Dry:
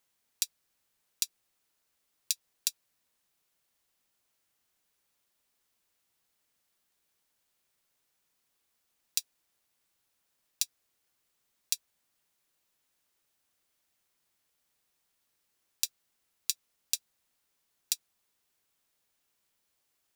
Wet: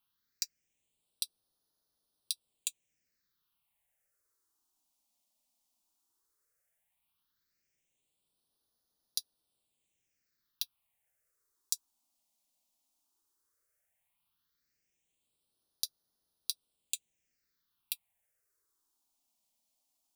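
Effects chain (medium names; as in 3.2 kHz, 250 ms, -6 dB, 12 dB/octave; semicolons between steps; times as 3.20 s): phase shifter stages 6, 0.14 Hz, lowest notch 110–2300 Hz; trim -2 dB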